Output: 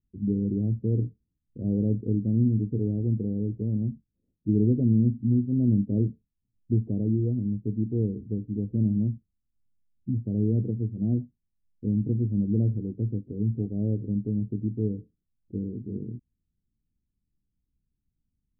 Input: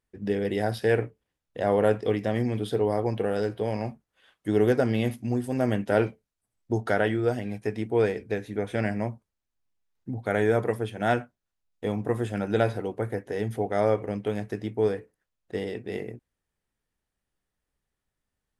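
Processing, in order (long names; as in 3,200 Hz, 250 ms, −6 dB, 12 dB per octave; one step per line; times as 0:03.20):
inverse Chebyshev low-pass filter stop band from 1,200 Hz, stop band 70 dB
level +6.5 dB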